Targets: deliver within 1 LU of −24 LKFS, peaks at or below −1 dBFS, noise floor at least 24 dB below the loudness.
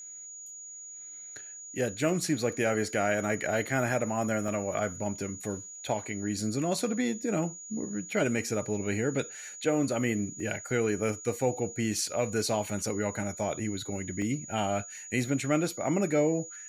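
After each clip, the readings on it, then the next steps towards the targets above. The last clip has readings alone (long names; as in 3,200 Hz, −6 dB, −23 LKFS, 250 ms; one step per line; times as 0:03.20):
number of dropouts 3; longest dropout 1.3 ms; interfering tone 6,800 Hz; level of the tone −42 dBFS; integrated loudness −30.5 LKFS; sample peak −14.5 dBFS; target loudness −24.0 LKFS
→ repair the gap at 0:04.48/0:10.40/0:14.22, 1.3 ms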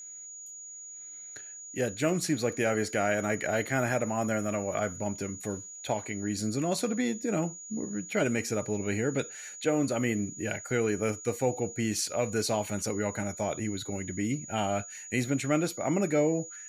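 number of dropouts 0; interfering tone 6,800 Hz; level of the tone −42 dBFS
→ notch filter 6,800 Hz, Q 30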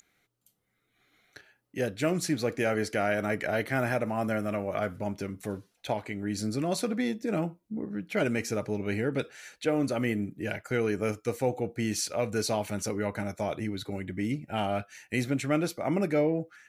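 interfering tone none found; integrated loudness −30.5 LKFS; sample peak −14.5 dBFS; target loudness −24.0 LKFS
→ level +6.5 dB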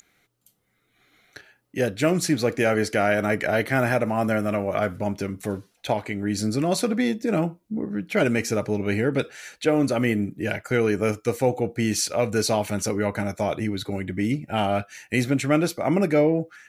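integrated loudness −24.0 LKFS; sample peak −8.0 dBFS; background noise floor −69 dBFS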